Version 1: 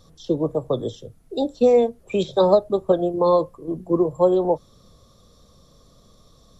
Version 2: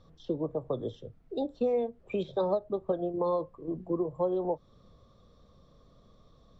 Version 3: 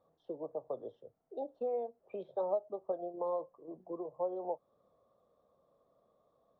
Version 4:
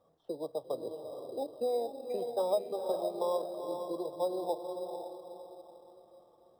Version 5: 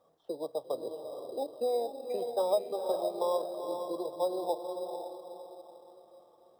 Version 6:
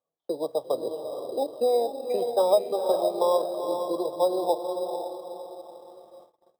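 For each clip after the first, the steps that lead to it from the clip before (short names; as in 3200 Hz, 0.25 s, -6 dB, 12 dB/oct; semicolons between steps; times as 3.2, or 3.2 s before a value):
compressor 2:1, threshold -25 dBFS, peak gain reduction 8 dB; LPF 2900 Hz 12 dB/oct; ending taper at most 550 dB/s; gain -5.5 dB
band-pass 690 Hz, Q 2; gain -2.5 dB
diffused feedback echo 0.475 s, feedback 40%, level -5.5 dB; in parallel at -6 dB: sample-and-hold 10×
low shelf 210 Hz -10 dB; gain +3 dB
gate -58 dBFS, range -28 dB; gain +7.5 dB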